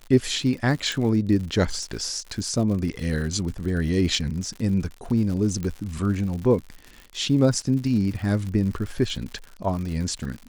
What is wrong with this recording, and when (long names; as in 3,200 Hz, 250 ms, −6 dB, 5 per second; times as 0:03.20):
surface crackle 110 per second −32 dBFS
0:00.92: click
0:05.63: click −18 dBFS